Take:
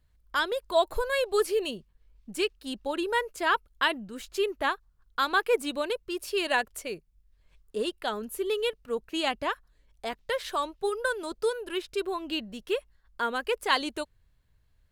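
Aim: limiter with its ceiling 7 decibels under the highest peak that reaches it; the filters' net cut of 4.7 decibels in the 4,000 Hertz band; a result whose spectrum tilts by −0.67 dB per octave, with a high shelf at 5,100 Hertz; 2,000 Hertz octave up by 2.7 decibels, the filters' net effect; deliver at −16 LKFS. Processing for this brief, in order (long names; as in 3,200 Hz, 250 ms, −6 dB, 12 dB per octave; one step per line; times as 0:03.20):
parametric band 2,000 Hz +6 dB
parametric band 4,000 Hz −7.5 dB
high-shelf EQ 5,100 Hz −6 dB
level +15 dB
brickwall limiter −2 dBFS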